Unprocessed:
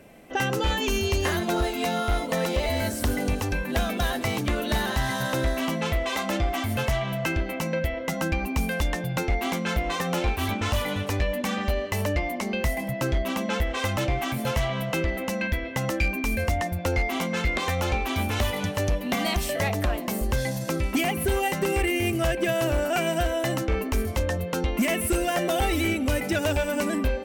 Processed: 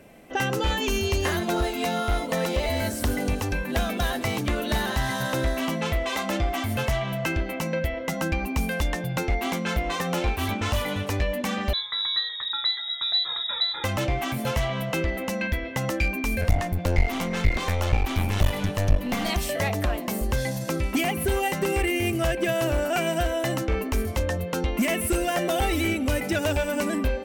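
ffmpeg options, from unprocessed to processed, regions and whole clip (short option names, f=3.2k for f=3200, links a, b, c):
-filter_complex "[0:a]asettb=1/sr,asplit=3[a][b][c];[a]atrim=end=11.734[d];[b]atrim=start=11.73:end=13.84,asetpts=PTS-STARTPTS,afade=t=in:d=0.004:c=qsin,afade=t=out:st=2.106:d=0.004:c=qsin,asuperstop=centerf=1100:order=4:qfactor=0.62,lowpass=f=3.4k:t=q:w=0.5098,lowpass=f=3.4k:t=q:w=0.6013,lowpass=f=3.4k:t=q:w=0.9,lowpass=f=3.4k:t=q:w=2.563,afreqshift=-4000[e];[c]atrim=start=13.836[f];[d][e]acrossfade=d=0.004:c1=hsin:c2=qsin[g];[g][f]acrossfade=d=0.004:c1=qsin:c2=hsin,asettb=1/sr,asplit=3[h][i][j];[h]atrim=end=16.414[k];[i]atrim=start=16.41:end=19.3,asetpts=PTS-STARTPTS,afade=t=in:d=0.004:c=qsin,afade=t=out:st=2.886:d=0.004:c=qsin,lowshelf=f=110:g=11.5,aeval=exprs='clip(val(0),-1,0.0376)':c=same[l];[j]atrim=start=19.296[m];[k][l]acrossfade=d=0.004:c1=hsin:c2=qsin[n];[n][m]acrossfade=d=0.004:c1=qsin:c2=hsin"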